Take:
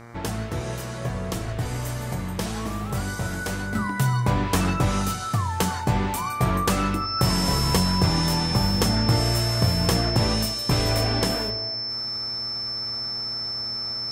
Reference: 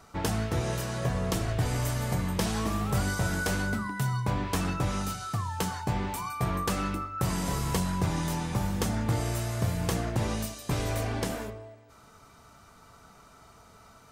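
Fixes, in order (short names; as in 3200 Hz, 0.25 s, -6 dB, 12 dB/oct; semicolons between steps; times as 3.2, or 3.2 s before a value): de-hum 117.2 Hz, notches 20; notch 5300 Hz, Q 30; gain correction -7 dB, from 3.75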